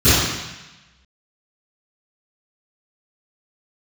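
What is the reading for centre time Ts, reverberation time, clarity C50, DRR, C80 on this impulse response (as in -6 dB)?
0.101 s, 1.0 s, -3.5 dB, -20.0 dB, 0.5 dB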